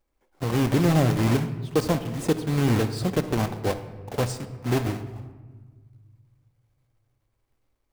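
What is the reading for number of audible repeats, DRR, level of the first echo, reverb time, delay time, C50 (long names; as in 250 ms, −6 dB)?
no echo audible, 9.0 dB, no echo audible, 1.5 s, no echo audible, 11.0 dB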